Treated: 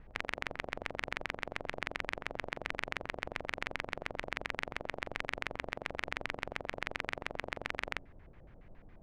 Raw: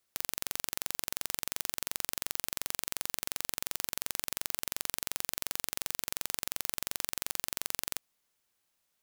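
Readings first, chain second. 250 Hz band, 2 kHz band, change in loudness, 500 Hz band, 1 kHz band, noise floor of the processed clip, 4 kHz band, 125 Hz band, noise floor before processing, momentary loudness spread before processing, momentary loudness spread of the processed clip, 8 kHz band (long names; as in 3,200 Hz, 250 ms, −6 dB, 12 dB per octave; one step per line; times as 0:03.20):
+4.0 dB, +6.0 dB, −5.0 dB, +7.0 dB, +4.0 dB, −57 dBFS, −6.5 dB, +4.5 dB, −79 dBFS, 0 LU, 2 LU, −23.0 dB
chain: hum removal 54.95 Hz, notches 5
echo ahead of the sound 52 ms −18.5 dB
background noise brown −56 dBFS
auto-filter low-pass square 7.2 Hz 620–2,100 Hz
level +3 dB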